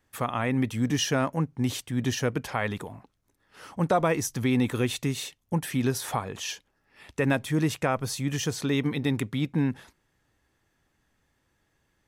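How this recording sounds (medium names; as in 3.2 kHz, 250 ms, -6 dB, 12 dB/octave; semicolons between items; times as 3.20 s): noise floor -73 dBFS; spectral tilt -5.0 dB/octave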